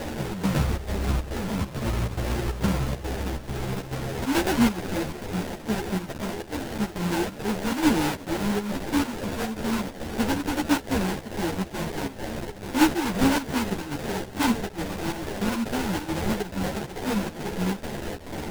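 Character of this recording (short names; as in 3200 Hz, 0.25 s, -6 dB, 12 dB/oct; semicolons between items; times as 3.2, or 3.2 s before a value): a quantiser's noise floor 6-bit, dither triangular; chopped level 2.3 Hz, depth 65%, duty 75%; aliases and images of a low sample rate 1200 Hz, jitter 20%; a shimmering, thickened sound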